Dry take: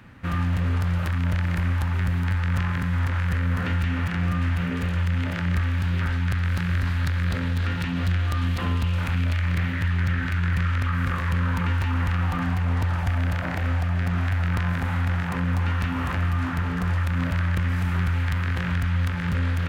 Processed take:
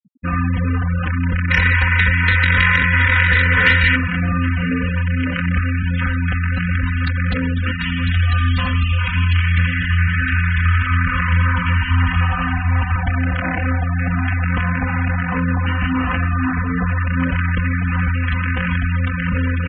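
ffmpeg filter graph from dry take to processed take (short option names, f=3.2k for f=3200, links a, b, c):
-filter_complex "[0:a]asettb=1/sr,asplit=3[a][b][c];[a]atrim=end=1.504[d];[b]atrim=start=1.5:end=3.96,asetpts=PTS-STARTPTS,afade=t=in:d=0.004:c=qsin,afade=t=out:st=2.456:d=0.004:c=qsin,equalizer=f=2k:t=o:w=0.97:g=13.5,aecho=1:1:2.1:0.48,atrim=end_sample=108486,asoftclip=type=hard:threshold=-15.5dB[e];[c]atrim=start=3.956[f];[d][e]acrossfade=d=0.004:c1=hsin:c2=qsin[g];[g][f]acrossfade=d=0.004:c1=qsin:c2=hsin,asettb=1/sr,asplit=3[h][i][j];[h]atrim=end=7.714[k];[i]atrim=start=7.71:end=12.96,asetpts=PTS-STARTPTS,afade=t=in:d=0.004:c=qsin,afade=t=out:st=5.246:d=0.004:c=qsin,equalizer=f=350:w=0.88:g=-10,acrusher=bits=7:mode=log:mix=0:aa=0.000001,aecho=1:1:59|82|415|575:0.266|0.596|0.133|0.335,atrim=end_sample=231525[l];[j]atrim=start=12.956[m];[k][l]acrossfade=d=0.004:c1=hsin:c2=qsin[n];[n][m]acrossfade=d=0.004:c1=qsin:c2=hsin,equalizer=f=2.8k:w=1.2:g=5,aecho=1:1:4:0.78,afftfilt=real='re*gte(hypot(re,im),0.0562)':imag='im*gte(hypot(re,im),0.0562)':win_size=1024:overlap=0.75,volume=5.5dB"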